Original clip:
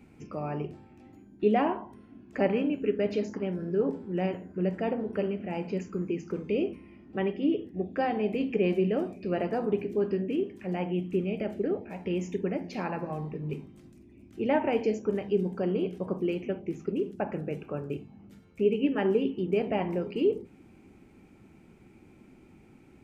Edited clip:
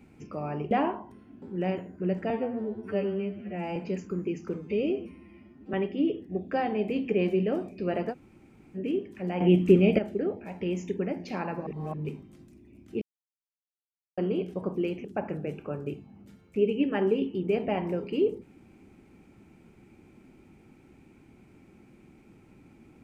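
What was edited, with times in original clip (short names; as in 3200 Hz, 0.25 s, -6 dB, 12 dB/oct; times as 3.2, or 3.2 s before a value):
0.71–1.53 cut
2.24–3.98 cut
4.86–5.59 stretch 2×
6.41–7.18 stretch 1.5×
9.56–10.21 room tone, crossfade 0.06 s
10.85–11.43 gain +10 dB
13.11–13.38 reverse
14.46–15.62 mute
16.49–17.08 cut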